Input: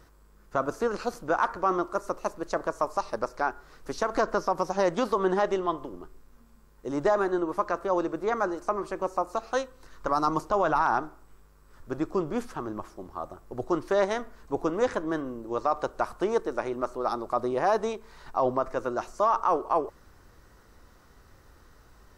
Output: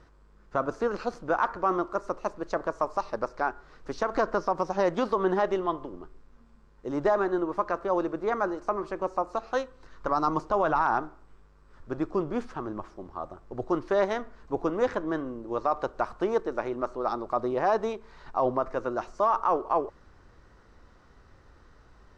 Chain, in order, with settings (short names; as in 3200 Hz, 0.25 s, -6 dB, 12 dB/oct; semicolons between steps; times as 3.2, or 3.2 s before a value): air absorption 110 m